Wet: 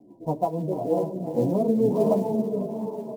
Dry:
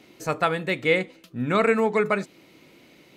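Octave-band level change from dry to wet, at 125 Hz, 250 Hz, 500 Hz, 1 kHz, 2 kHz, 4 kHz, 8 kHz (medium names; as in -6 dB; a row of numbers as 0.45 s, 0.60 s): +3.0 dB, +4.0 dB, +0.5 dB, -3.5 dB, under -30 dB, under -20 dB, no reading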